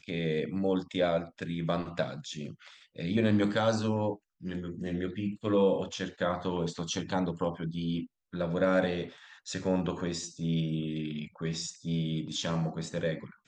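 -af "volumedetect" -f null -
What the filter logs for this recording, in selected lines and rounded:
mean_volume: -31.5 dB
max_volume: -14.5 dB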